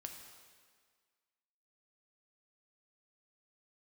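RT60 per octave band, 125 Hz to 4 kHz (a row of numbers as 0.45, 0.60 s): 1.5, 1.7, 1.7, 1.7, 1.7, 1.6 s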